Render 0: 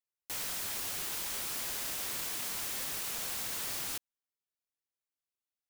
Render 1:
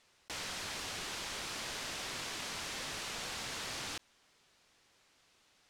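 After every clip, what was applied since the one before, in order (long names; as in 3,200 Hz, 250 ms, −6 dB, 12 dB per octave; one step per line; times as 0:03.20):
low-pass filter 5,500 Hz 12 dB per octave
envelope flattener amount 50%
level +1 dB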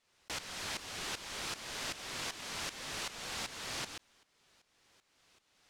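shaped tremolo saw up 2.6 Hz, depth 80%
level +3.5 dB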